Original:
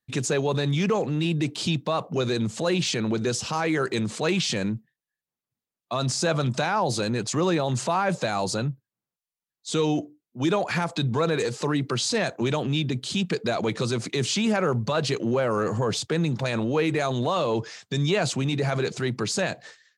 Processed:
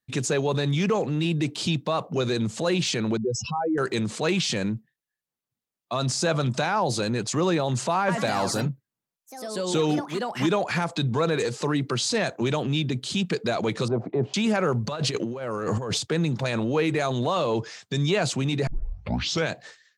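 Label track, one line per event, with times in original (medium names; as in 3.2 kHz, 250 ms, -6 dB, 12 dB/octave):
3.170000	3.780000	spectral contrast enhancement exponent 3.4
7.980000	10.820000	ever faster or slower copies 98 ms, each echo +3 st, echoes 3, each echo -6 dB
13.880000	14.340000	resonant low-pass 740 Hz, resonance Q 2.9
14.840000	15.980000	compressor with a negative ratio -27 dBFS, ratio -0.5
18.670000	18.670000	tape start 0.85 s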